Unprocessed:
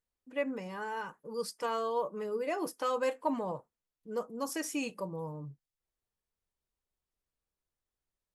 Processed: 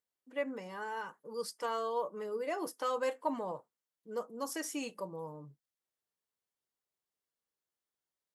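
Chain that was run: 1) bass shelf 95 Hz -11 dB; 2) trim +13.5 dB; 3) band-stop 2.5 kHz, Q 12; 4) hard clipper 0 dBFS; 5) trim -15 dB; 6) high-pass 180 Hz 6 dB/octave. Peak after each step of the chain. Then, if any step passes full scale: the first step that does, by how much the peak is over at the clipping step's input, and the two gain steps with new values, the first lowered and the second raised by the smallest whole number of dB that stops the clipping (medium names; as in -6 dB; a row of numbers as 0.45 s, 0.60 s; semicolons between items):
-19.0 dBFS, -5.5 dBFS, -5.5 dBFS, -5.5 dBFS, -20.5 dBFS, -21.0 dBFS; nothing clips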